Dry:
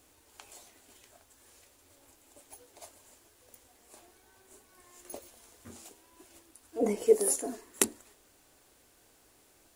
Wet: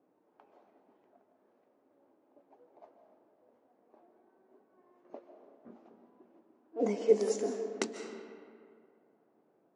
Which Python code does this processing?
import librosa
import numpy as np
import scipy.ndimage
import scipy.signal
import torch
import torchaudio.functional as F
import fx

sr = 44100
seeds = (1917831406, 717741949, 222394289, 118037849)

y = fx.env_lowpass(x, sr, base_hz=670.0, full_db=-26.5)
y = scipy.signal.sosfilt(scipy.signal.ellip(3, 1.0, 40, [170.0, 6000.0], 'bandpass', fs=sr, output='sos'), y)
y = fx.rev_freeverb(y, sr, rt60_s=2.2, hf_ratio=0.55, predelay_ms=105, drr_db=6.5)
y = y * librosa.db_to_amplitude(-1.5)